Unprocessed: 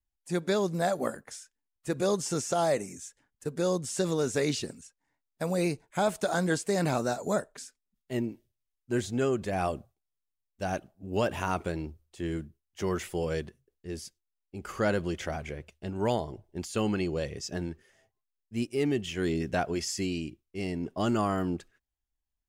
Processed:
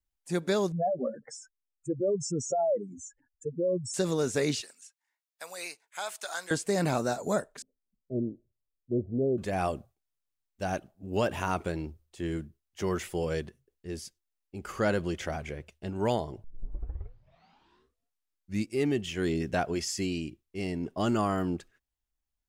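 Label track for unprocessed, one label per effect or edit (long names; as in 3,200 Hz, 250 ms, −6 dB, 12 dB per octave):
0.720000	3.940000	expanding power law on the bin magnitudes exponent 3.2
4.610000	6.510000	Bessel high-pass filter 1,500 Hz
7.620000	9.380000	Butterworth low-pass 630 Hz 48 dB per octave
16.440000	16.440000	tape start 2.41 s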